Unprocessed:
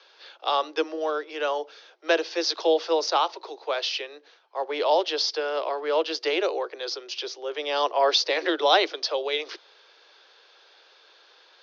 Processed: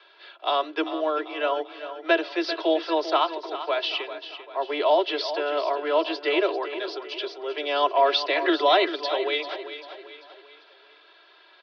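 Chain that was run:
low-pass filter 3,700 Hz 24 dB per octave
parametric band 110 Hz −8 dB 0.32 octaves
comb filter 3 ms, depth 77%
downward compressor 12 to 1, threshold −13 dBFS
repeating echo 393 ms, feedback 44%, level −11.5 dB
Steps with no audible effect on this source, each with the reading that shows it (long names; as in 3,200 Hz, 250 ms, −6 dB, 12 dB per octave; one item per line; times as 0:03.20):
parametric band 110 Hz: nothing at its input below 270 Hz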